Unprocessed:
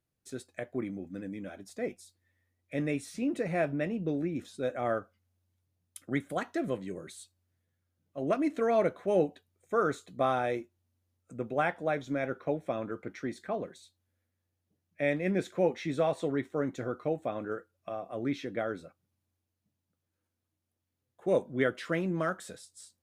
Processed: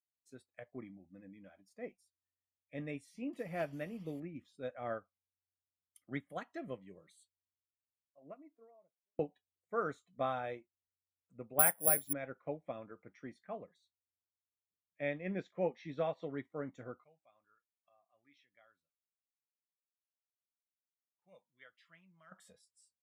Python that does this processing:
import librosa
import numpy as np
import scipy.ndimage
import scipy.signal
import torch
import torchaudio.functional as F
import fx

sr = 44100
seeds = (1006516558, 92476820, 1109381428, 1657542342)

y = fx.delta_mod(x, sr, bps=64000, step_db=-44.0, at=(3.33, 4.2))
y = fx.studio_fade_out(y, sr, start_s=7.01, length_s=2.18)
y = fx.resample_bad(y, sr, factor=4, down='none', up='zero_stuff', at=(11.59, 12.13))
y = fx.lowpass(y, sr, hz=6500.0, slope=24, at=(15.08, 16.34))
y = fx.tone_stack(y, sr, knobs='5-5-5', at=(17.04, 22.32))
y = fx.noise_reduce_blind(y, sr, reduce_db=13)
y = fx.dynamic_eq(y, sr, hz=350.0, q=2.8, threshold_db=-46.0, ratio=4.0, max_db=-4)
y = fx.upward_expand(y, sr, threshold_db=-45.0, expansion=1.5)
y = y * librosa.db_to_amplitude(-3.5)